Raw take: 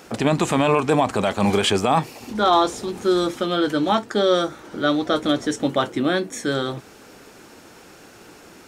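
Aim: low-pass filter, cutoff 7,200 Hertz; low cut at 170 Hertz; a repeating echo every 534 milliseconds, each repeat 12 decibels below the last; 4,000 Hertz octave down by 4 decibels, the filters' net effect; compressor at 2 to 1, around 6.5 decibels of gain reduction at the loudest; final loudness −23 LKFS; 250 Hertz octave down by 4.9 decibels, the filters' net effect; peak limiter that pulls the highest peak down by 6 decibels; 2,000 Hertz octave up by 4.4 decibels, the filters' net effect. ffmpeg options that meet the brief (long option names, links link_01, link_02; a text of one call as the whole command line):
ffmpeg -i in.wav -af "highpass=170,lowpass=7200,equalizer=frequency=250:width_type=o:gain=-6,equalizer=frequency=2000:width_type=o:gain=8.5,equalizer=frequency=4000:width_type=o:gain=-8.5,acompressor=threshold=-25dB:ratio=2,alimiter=limit=-16.5dB:level=0:latency=1,aecho=1:1:534|1068|1602:0.251|0.0628|0.0157,volume=5dB" out.wav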